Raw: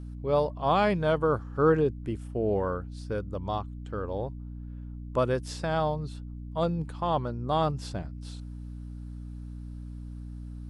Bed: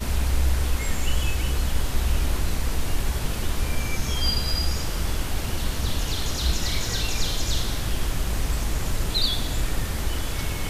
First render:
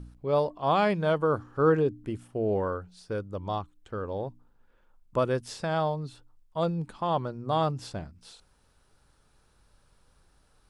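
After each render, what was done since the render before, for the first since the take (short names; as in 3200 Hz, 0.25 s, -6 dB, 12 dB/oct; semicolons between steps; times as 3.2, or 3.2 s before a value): de-hum 60 Hz, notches 5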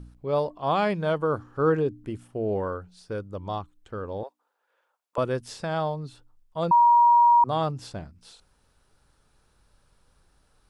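4.23–5.18 HPF 500 Hz 24 dB/oct; 6.71–7.44 bleep 951 Hz -13.5 dBFS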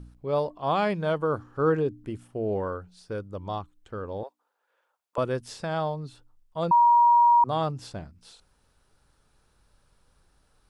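gain -1 dB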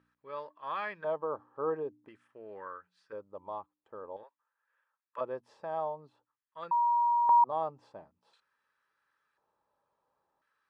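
LFO band-pass square 0.48 Hz 770–1600 Hz; notch comb 720 Hz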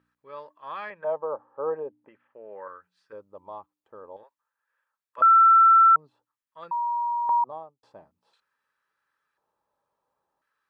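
0.9–2.68 speaker cabinet 150–2800 Hz, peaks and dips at 320 Hz -4 dB, 550 Hz +10 dB, 860 Hz +6 dB; 5.22–5.96 bleep 1340 Hz -12 dBFS; 7.35–7.83 studio fade out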